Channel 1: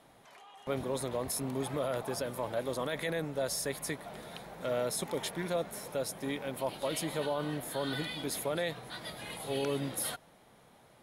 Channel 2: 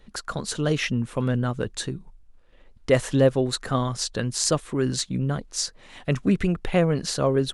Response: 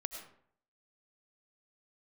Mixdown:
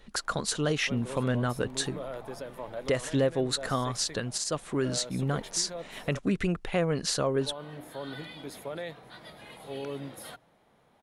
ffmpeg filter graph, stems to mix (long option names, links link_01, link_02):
-filter_complex "[0:a]highshelf=frequency=5100:gain=-10,bandreject=frequency=60:width_type=h:width=6,bandreject=frequency=120:width_type=h:width=6,bandreject=frequency=180:width_type=h:width=6,bandreject=frequency=240:width_type=h:width=6,bandreject=frequency=300:width_type=h:width=6,adelay=200,volume=-3.5dB,asplit=3[link_01][link_02][link_03];[link_01]atrim=end=6.19,asetpts=PTS-STARTPTS,afade=type=out:start_time=6.186:duration=0.004:curve=hsin[link_04];[link_02]atrim=start=6.19:end=7.41,asetpts=PTS-STARTPTS,volume=0[link_05];[link_03]atrim=start=7.41,asetpts=PTS-STARTPTS,afade=type=in:duration=0.004:curve=hsin[link_06];[link_04][link_05][link_06]concat=n=3:v=0:a=1[link_07];[1:a]lowshelf=frequency=340:gain=-6,volume=2.5dB[link_08];[link_07][link_08]amix=inputs=2:normalize=0,alimiter=limit=-17.5dB:level=0:latency=1:release=432"